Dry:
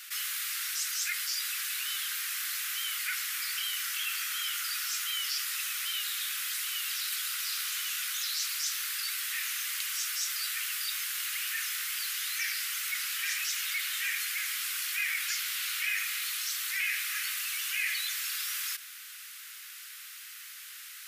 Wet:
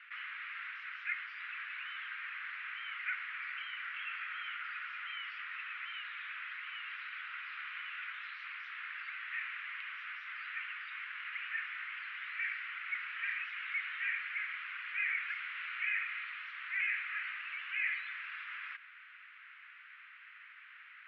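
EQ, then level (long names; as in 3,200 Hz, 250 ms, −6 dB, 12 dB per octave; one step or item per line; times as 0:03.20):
high-pass filter 770 Hz 6 dB per octave
Butterworth low-pass 2,400 Hz 36 dB per octave
0.0 dB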